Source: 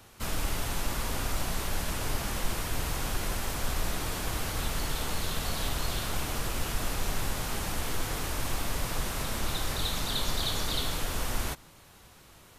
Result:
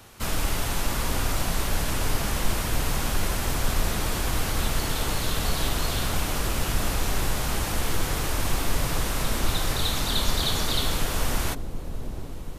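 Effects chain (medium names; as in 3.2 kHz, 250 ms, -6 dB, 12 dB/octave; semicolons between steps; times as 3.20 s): feedback echo behind a low-pass 730 ms, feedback 67%, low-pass 490 Hz, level -7 dB; trim +5 dB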